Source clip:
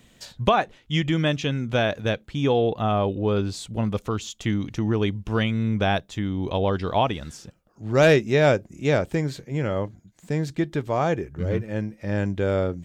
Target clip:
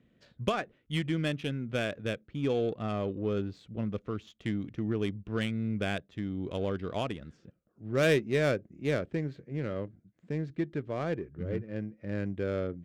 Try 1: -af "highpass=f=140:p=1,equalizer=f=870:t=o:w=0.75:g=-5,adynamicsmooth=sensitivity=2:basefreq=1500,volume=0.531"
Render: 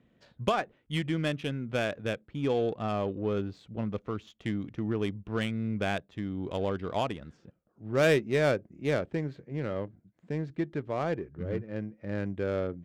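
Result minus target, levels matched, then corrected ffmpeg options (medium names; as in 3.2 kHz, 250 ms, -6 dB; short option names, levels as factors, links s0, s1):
1 kHz band +3.5 dB
-af "highpass=f=140:p=1,equalizer=f=870:t=o:w=0.75:g=-12.5,adynamicsmooth=sensitivity=2:basefreq=1500,volume=0.531"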